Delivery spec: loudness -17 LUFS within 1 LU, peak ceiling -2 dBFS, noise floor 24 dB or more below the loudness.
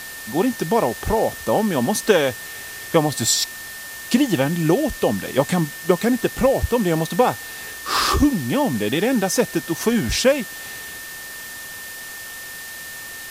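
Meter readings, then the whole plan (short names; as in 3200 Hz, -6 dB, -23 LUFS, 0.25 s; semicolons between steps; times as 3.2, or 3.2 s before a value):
steady tone 1800 Hz; tone level -35 dBFS; noise floor -35 dBFS; noise floor target -44 dBFS; loudness -20.0 LUFS; peak -2.0 dBFS; loudness target -17.0 LUFS
-> notch 1800 Hz, Q 30; denoiser 9 dB, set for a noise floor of -35 dBFS; gain +3 dB; limiter -2 dBFS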